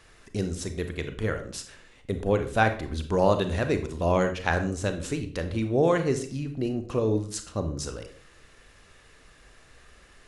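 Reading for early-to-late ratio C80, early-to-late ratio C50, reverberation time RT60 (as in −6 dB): 14.5 dB, 10.5 dB, 0.50 s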